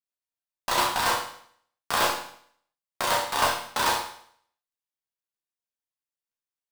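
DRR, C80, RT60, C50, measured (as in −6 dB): −4.0 dB, 8.5 dB, 0.60 s, 4.5 dB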